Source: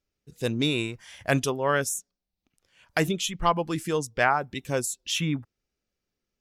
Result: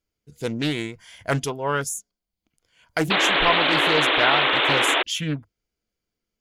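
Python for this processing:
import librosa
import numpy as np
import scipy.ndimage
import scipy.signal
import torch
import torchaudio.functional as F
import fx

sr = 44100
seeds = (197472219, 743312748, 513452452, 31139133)

y = fx.ripple_eq(x, sr, per_octave=1.8, db=6)
y = fx.spec_paint(y, sr, seeds[0], shape='noise', start_s=3.1, length_s=1.93, low_hz=260.0, high_hz=3700.0, level_db=-20.0)
y = fx.doppler_dist(y, sr, depth_ms=0.44)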